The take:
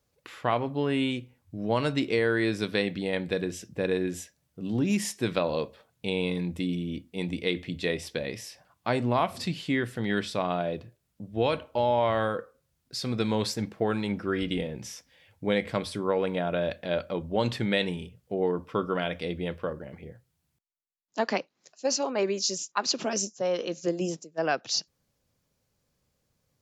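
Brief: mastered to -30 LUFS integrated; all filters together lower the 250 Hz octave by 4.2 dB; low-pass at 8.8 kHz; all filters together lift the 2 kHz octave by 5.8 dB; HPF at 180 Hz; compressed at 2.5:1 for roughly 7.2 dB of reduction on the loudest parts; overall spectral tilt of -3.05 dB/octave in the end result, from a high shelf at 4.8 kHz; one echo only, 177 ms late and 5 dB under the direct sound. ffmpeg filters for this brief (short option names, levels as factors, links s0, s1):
-af "highpass=180,lowpass=8800,equalizer=f=250:t=o:g=-4,equalizer=f=2000:t=o:g=6.5,highshelf=f=4800:g=4,acompressor=threshold=0.0316:ratio=2.5,aecho=1:1:177:0.562,volume=1.33"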